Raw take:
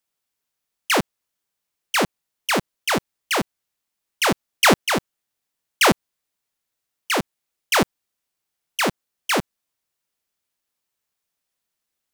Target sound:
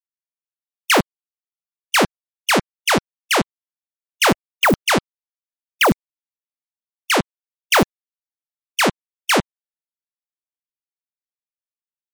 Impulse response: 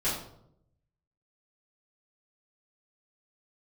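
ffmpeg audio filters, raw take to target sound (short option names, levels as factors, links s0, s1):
-af "afftfilt=real='re*gte(hypot(re,im),0.0141)':imag='im*gte(hypot(re,im),0.0141)':win_size=1024:overlap=0.75,aeval=exprs='0.224*(abs(mod(val(0)/0.224+3,4)-2)-1)':c=same,volume=1.68"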